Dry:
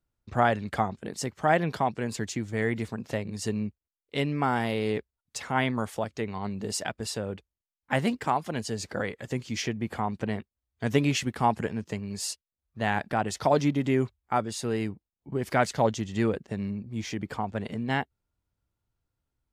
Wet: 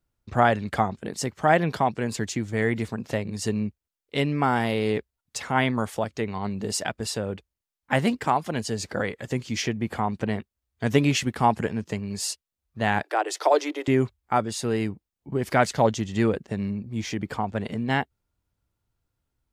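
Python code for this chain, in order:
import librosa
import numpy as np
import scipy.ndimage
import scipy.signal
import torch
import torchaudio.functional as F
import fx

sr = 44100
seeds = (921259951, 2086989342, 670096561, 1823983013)

y = fx.steep_highpass(x, sr, hz=310.0, slope=96, at=(13.03, 13.88))
y = y * 10.0 ** (3.5 / 20.0)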